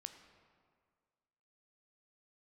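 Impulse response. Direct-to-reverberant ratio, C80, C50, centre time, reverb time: 7.5 dB, 10.0 dB, 9.0 dB, 21 ms, 1.9 s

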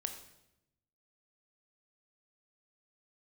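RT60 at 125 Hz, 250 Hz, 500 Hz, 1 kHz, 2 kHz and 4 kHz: 1.3 s, 1.2 s, 0.95 s, 0.80 s, 0.75 s, 0.75 s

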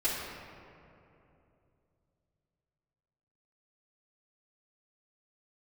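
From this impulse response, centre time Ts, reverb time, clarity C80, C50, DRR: 113 ms, 2.9 s, 1.5 dB, 0.0 dB, -13.0 dB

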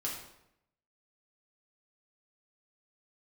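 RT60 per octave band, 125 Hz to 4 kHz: 0.95 s, 0.90 s, 0.85 s, 0.80 s, 0.70 s, 0.60 s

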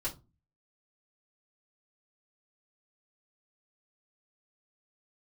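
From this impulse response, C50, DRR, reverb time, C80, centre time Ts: 15.5 dB, -6.0 dB, 0.25 s, 22.0 dB, 13 ms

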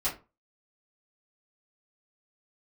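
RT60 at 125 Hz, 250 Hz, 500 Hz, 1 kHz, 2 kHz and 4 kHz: 0.35 s, 0.30 s, 0.30 s, 0.30 s, 0.25 s, 0.20 s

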